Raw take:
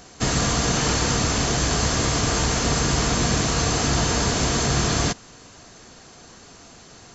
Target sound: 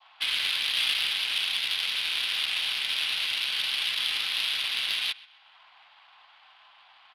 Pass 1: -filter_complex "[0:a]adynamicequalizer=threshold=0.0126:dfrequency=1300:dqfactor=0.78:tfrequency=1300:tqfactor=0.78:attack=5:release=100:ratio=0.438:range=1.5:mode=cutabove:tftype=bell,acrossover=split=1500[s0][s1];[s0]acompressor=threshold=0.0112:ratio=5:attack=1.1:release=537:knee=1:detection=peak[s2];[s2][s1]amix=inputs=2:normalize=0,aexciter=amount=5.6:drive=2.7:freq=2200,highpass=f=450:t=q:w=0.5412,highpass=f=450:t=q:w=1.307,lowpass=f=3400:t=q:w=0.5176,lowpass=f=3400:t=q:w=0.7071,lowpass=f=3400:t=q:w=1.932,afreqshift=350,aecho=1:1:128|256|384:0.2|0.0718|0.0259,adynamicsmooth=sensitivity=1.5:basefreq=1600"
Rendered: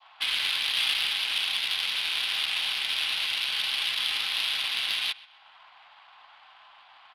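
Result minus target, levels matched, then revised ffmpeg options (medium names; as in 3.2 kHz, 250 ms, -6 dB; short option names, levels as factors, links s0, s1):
compression: peak gain reduction -6 dB
-filter_complex "[0:a]adynamicequalizer=threshold=0.0126:dfrequency=1300:dqfactor=0.78:tfrequency=1300:tqfactor=0.78:attack=5:release=100:ratio=0.438:range=1.5:mode=cutabove:tftype=bell,acrossover=split=1500[s0][s1];[s0]acompressor=threshold=0.00473:ratio=5:attack=1.1:release=537:knee=1:detection=peak[s2];[s2][s1]amix=inputs=2:normalize=0,aexciter=amount=5.6:drive=2.7:freq=2200,highpass=f=450:t=q:w=0.5412,highpass=f=450:t=q:w=1.307,lowpass=f=3400:t=q:w=0.5176,lowpass=f=3400:t=q:w=0.7071,lowpass=f=3400:t=q:w=1.932,afreqshift=350,aecho=1:1:128|256|384:0.2|0.0718|0.0259,adynamicsmooth=sensitivity=1.5:basefreq=1600"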